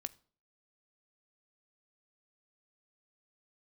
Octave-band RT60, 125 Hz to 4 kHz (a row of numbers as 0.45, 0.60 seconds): 0.55, 0.55, 0.50, 0.45, 0.35, 0.35 seconds